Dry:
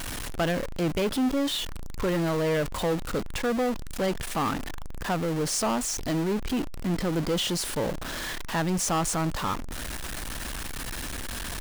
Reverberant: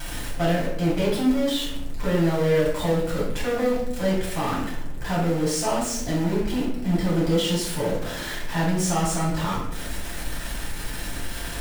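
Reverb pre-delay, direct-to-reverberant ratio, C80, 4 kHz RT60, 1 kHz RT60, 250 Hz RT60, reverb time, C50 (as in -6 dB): 6 ms, -6.5 dB, 6.5 dB, 0.55 s, 0.65 s, 1.1 s, 0.85 s, 3.0 dB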